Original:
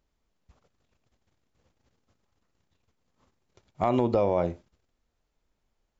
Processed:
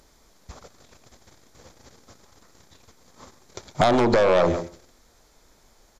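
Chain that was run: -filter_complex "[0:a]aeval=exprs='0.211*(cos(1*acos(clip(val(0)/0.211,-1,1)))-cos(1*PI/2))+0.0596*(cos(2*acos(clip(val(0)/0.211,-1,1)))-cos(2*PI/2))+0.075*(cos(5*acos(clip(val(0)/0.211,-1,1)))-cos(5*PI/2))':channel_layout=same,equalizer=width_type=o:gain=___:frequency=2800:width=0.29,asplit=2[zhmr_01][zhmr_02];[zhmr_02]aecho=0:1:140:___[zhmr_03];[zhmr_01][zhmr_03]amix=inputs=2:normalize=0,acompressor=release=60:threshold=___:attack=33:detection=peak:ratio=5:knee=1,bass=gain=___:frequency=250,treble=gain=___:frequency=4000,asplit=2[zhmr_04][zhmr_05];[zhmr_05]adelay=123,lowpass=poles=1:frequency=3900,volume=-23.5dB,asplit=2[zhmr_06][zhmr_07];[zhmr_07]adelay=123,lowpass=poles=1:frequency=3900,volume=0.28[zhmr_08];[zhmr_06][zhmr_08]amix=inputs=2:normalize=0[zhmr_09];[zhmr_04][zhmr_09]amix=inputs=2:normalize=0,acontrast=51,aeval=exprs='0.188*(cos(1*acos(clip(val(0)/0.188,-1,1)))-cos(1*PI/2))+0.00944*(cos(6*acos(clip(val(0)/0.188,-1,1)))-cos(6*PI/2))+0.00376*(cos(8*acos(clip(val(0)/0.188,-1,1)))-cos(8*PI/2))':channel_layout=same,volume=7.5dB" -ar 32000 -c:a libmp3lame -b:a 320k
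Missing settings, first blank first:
-8.5, 0.106, -33dB, -6, 6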